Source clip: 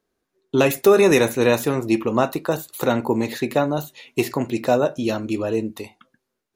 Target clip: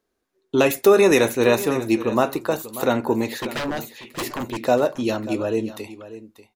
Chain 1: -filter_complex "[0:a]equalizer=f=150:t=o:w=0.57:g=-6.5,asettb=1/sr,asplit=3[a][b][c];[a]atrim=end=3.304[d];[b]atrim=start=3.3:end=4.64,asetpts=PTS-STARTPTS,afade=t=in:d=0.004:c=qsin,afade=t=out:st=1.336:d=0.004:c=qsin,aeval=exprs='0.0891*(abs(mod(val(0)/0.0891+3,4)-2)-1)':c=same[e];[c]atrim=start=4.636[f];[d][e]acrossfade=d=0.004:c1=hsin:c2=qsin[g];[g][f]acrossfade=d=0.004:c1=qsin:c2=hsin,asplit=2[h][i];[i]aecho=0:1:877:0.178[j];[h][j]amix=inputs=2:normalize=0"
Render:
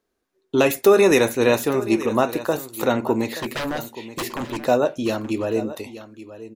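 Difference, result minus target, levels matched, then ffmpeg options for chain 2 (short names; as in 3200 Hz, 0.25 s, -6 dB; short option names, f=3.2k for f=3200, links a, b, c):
echo 0.288 s late
-filter_complex "[0:a]equalizer=f=150:t=o:w=0.57:g=-6.5,asettb=1/sr,asplit=3[a][b][c];[a]atrim=end=3.304[d];[b]atrim=start=3.3:end=4.64,asetpts=PTS-STARTPTS,afade=t=in:d=0.004:c=qsin,afade=t=out:st=1.336:d=0.004:c=qsin,aeval=exprs='0.0891*(abs(mod(val(0)/0.0891+3,4)-2)-1)':c=same[e];[c]atrim=start=4.636[f];[d][e]acrossfade=d=0.004:c1=hsin:c2=qsin[g];[g][f]acrossfade=d=0.004:c1=qsin:c2=hsin,asplit=2[h][i];[i]aecho=0:1:589:0.178[j];[h][j]amix=inputs=2:normalize=0"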